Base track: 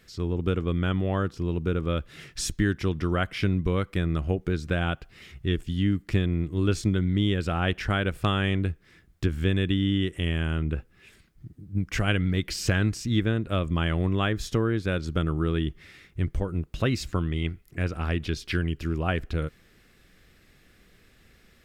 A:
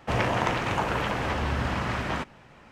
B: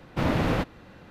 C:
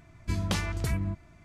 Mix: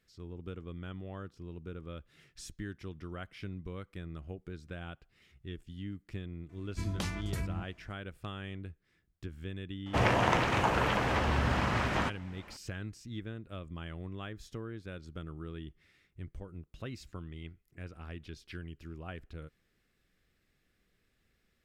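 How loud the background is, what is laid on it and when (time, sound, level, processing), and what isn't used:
base track -17 dB
6.49 s: add C -7 dB
9.86 s: add A -1.5 dB
not used: B

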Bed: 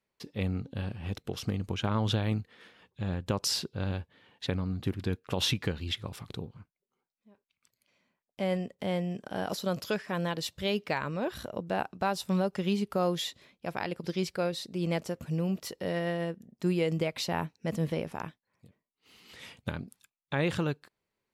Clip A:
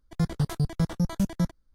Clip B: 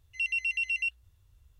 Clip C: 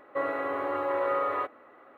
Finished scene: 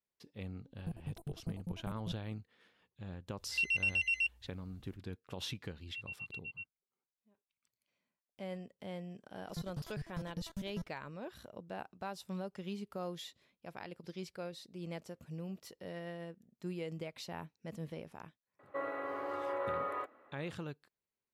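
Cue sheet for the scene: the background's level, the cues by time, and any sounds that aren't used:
bed -13 dB
0.67 s: add A -16.5 dB + elliptic band-stop 830–9000 Hz
3.38 s: add B -2.5 dB
5.75 s: add B -15.5 dB + spectral contrast expander 2.5:1
9.37 s: add A -17 dB
18.59 s: add C -9 dB

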